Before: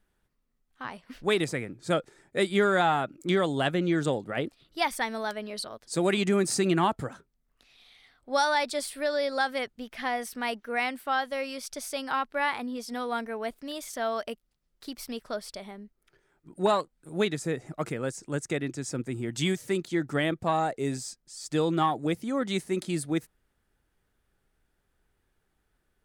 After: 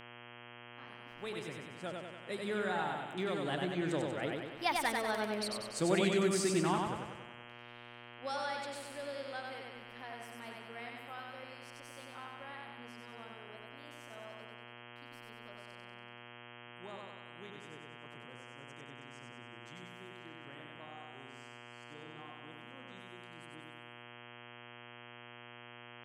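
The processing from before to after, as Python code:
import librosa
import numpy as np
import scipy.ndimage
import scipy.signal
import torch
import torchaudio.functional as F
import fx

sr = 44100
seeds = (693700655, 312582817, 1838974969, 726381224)

y = fx.doppler_pass(x, sr, speed_mps=12, closest_m=11.0, pass_at_s=5.29)
y = fx.echo_feedback(y, sr, ms=95, feedback_pct=56, wet_db=-3)
y = fx.dmg_buzz(y, sr, base_hz=120.0, harmonics=27, level_db=-48.0, tilt_db=-1, odd_only=False)
y = F.gain(torch.from_numpy(y), -4.5).numpy()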